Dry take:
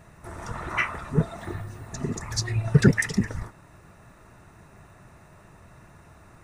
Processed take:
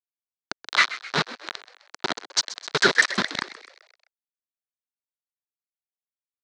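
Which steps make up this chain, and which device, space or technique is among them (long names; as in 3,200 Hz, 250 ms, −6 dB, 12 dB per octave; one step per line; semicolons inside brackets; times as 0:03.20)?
0:02.36–0:03.06: octave-band graphic EQ 125/250/500/1,000/4,000/8,000 Hz −8/−8/+5/+5/−7/+11 dB
hand-held game console (bit reduction 4 bits; loudspeaker in its box 420–5,500 Hz, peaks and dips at 490 Hz −9 dB, 770 Hz −4 dB, 1,500 Hz +3 dB, 2,600 Hz −4 dB, 4,000 Hz +9 dB)
echo with shifted repeats 129 ms, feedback 53%, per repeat +84 Hz, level −15.5 dB
level +6 dB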